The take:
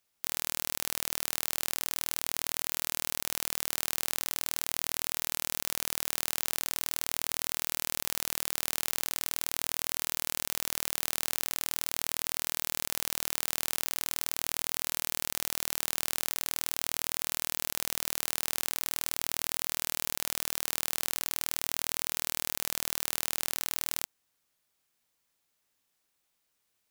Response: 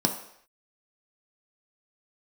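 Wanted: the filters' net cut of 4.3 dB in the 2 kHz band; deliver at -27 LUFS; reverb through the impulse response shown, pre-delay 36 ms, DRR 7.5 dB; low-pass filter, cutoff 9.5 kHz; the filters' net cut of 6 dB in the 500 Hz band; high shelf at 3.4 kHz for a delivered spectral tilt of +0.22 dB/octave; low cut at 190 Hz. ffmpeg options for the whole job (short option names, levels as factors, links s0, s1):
-filter_complex "[0:a]highpass=190,lowpass=9500,equalizer=f=500:t=o:g=-7.5,equalizer=f=2000:t=o:g=-7.5,highshelf=f=3400:g=6.5,asplit=2[s0][s1];[1:a]atrim=start_sample=2205,adelay=36[s2];[s1][s2]afir=irnorm=-1:irlink=0,volume=0.133[s3];[s0][s3]amix=inputs=2:normalize=0,volume=1.58"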